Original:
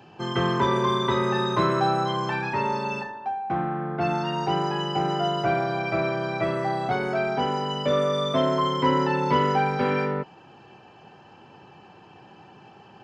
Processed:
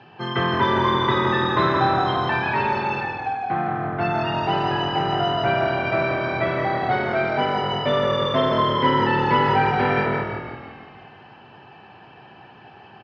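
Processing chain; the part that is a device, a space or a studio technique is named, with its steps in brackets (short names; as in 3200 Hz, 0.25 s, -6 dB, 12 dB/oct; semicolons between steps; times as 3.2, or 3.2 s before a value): frequency-shifting delay pedal into a guitar cabinet (frequency-shifting echo 0.166 s, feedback 58%, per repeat -41 Hz, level -6 dB; speaker cabinet 110–4400 Hz, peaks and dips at 110 Hz +4 dB, 180 Hz -4 dB, 310 Hz -6 dB, 530 Hz -3 dB, 1800 Hz +5 dB); gain +3 dB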